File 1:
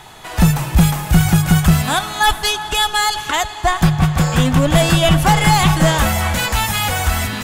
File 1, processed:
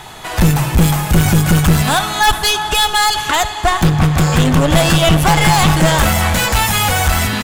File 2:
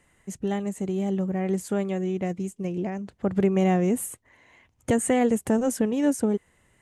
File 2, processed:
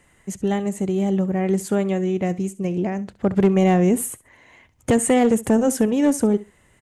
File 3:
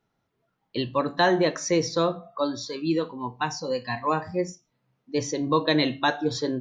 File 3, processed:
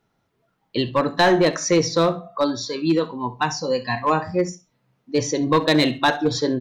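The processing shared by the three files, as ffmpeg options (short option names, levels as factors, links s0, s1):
-af "aeval=exprs='clip(val(0),-1,0.126)':c=same,acontrast=72,aecho=1:1:67|134:0.119|0.0202,volume=0.891"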